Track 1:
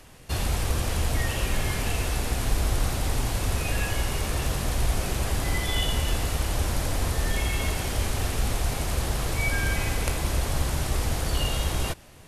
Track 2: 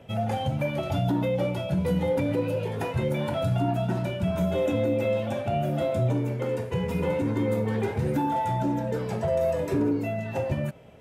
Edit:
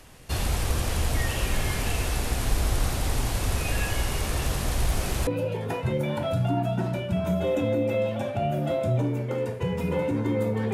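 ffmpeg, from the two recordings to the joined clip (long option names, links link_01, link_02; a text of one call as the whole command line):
ffmpeg -i cue0.wav -i cue1.wav -filter_complex "[0:a]asettb=1/sr,asplit=3[link_01][link_02][link_03];[link_01]atrim=end=4.844[link_04];[link_02]atrim=start=4.84:end=5.27,asetpts=PTS-STARTPTS,afade=type=in:duration=0.004:curve=qsin,afade=type=out:start_time=0.426:duration=0.004:curve=qsin,aeval=exprs='0.15*(abs(mod(val(0)/0.15+3,4)-2)-1)':channel_layout=same[link_05];[link_03]atrim=start=5.266[link_06];[link_04][link_05]acrossfade=duration=0.004:curve1=hsin:curve2=qsin[link_07];[link_07][link_06]acrossfade=duration=0.004:curve1=qsin:curve2=hsin,apad=whole_dur=10.73,atrim=end=10.73,atrim=end=5.272[link_08];[1:a]atrim=start=2.378:end=7.84[link_09];[link_08][link_09]acrossfade=duration=0.004:curve1=hsin:curve2=hsin" out.wav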